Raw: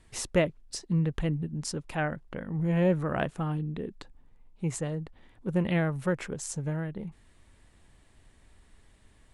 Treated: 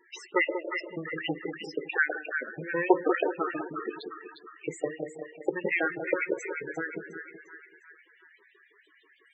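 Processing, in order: de-esser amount 90%; resonant low shelf 520 Hz +10.5 dB, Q 3; de-hum 55.23 Hz, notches 23; saturation -4 dBFS, distortion -23 dB; spring tank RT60 1 s, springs 51 ms, chirp 45 ms, DRR 9.5 dB; LFO high-pass saw up 6.2 Hz 750–3500 Hz; on a send: two-band feedback delay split 1 kHz, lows 189 ms, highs 354 ms, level -6.5 dB; on the sum: loudest bins only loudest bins 16; trim +7.5 dB

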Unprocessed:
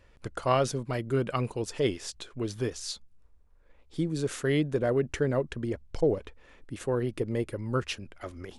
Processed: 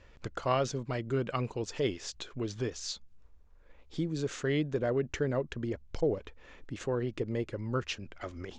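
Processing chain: elliptic low-pass 7 kHz, stop band 80 dB; in parallel at +3 dB: compression, threshold -42 dBFS, peak gain reduction 20 dB; on the sum: trim -4.5 dB

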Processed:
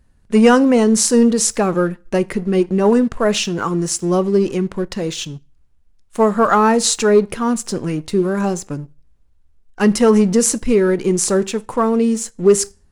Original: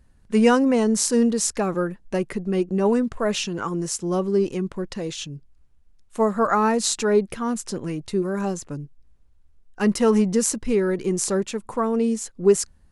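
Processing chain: on a send at -17 dB: reverberation RT60 0.40 s, pre-delay 15 ms; on the sum: waveshaping leveller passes 1; trim +3 dB

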